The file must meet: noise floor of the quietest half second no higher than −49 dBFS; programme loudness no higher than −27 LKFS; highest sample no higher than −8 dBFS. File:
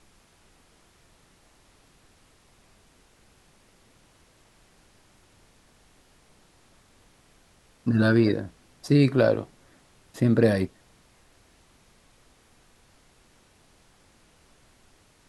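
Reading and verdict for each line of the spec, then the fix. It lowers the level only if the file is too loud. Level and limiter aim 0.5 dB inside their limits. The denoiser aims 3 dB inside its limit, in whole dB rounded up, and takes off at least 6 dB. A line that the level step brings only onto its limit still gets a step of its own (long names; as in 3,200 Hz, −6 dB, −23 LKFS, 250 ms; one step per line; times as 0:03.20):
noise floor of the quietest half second −60 dBFS: in spec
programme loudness −23.0 LKFS: out of spec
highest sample −7.0 dBFS: out of spec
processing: level −4.5 dB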